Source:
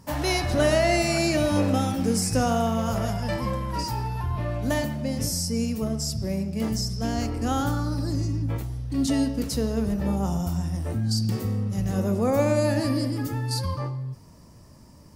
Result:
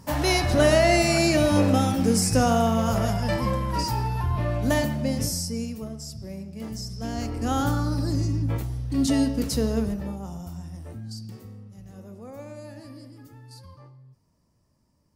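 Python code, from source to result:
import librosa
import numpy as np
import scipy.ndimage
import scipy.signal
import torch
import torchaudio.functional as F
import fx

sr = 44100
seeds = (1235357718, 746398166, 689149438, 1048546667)

y = fx.gain(x, sr, db=fx.line((5.09, 2.5), (5.95, -9.0), (6.59, -9.0), (7.66, 1.5), (9.77, 1.5), (10.19, -10.0), (10.87, -10.0), (11.78, -18.5)))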